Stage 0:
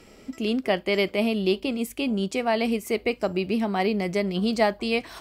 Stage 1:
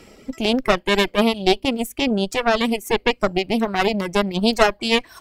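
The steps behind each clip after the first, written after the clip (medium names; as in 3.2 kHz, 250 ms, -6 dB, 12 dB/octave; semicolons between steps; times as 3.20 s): Chebyshev shaper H 4 -8 dB, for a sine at -8.5 dBFS; reverb removal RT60 1.3 s; trim +5 dB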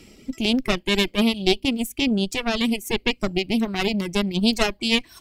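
high-order bell 900 Hz -9 dB 2.3 oct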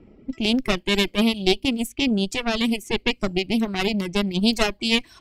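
level-controlled noise filter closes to 910 Hz, open at -20 dBFS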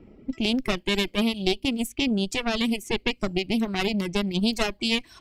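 compression 2:1, threshold -22 dBFS, peak gain reduction 5.5 dB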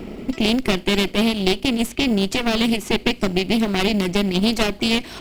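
spectral levelling over time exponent 0.6; in parallel at -12 dB: sample-and-hold 18×; on the sum: trim +1.5 dB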